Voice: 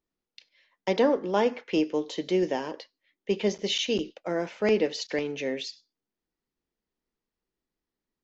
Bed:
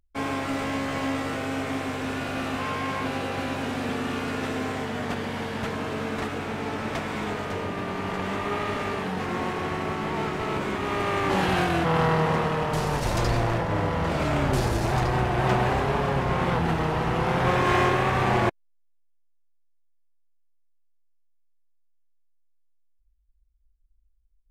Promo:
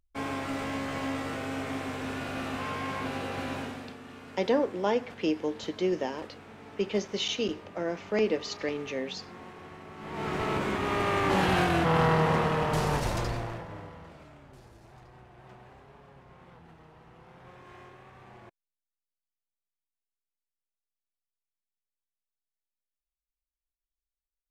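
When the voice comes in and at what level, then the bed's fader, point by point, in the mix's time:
3.50 s, -3.0 dB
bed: 3.58 s -5 dB
3.98 s -17.5 dB
9.91 s -17.5 dB
10.34 s -1.5 dB
12.95 s -1.5 dB
14.40 s -29 dB

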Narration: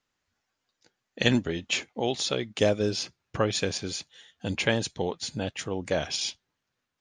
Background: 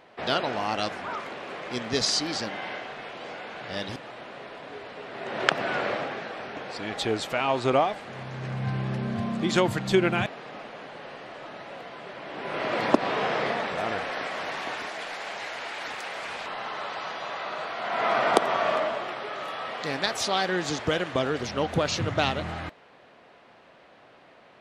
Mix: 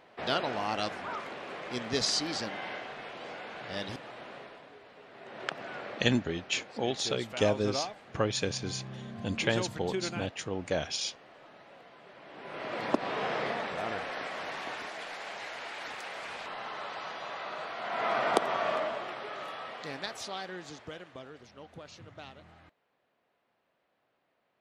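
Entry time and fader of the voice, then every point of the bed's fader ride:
4.80 s, -3.5 dB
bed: 4.35 s -4 dB
4.76 s -13 dB
12.00 s -13 dB
13.30 s -5.5 dB
19.42 s -5.5 dB
21.49 s -22.5 dB

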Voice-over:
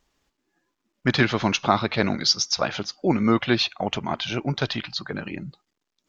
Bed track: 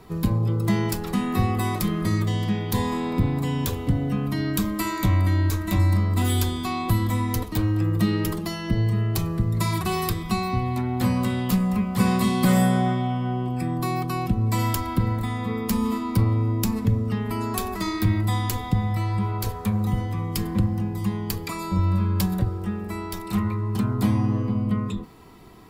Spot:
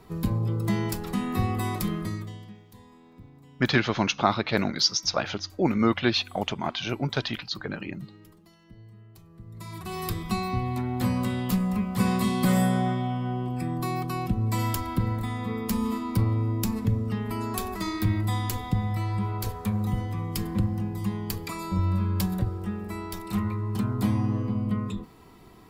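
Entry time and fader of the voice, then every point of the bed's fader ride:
2.55 s, -2.5 dB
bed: 1.94 s -4 dB
2.71 s -27 dB
9.24 s -27 dB
10.16 s -3.5 dB

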